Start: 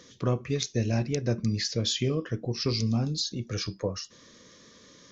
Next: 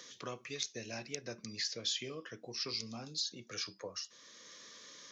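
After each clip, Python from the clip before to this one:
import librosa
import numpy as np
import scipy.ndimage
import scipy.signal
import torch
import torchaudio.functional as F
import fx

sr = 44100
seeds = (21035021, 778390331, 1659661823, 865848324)

y = fx.highpass(x, sr, hz=1200.0, slope=6)
y = fx.band_squash(y, sr, depth_pct=40)
y = y * librosa.db_to_amplitude(-5.0)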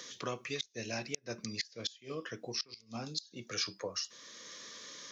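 y = fx.gate_flip(x, sr, shuts_db=-27.0, range_db=-25)
y = y * librosa.db_to_amplitude(5.0)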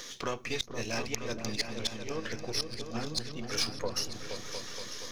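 y = np.where(x < 0.0, 10.0 ** (-7.0 / 20.0) * x, x)
y = fx.echo_opening(y, sr, ms=236, hz=200, octaves=2, feedback_pct=70, wet_db=-3)
y = y * librosa.db_to_amplitude(6.5)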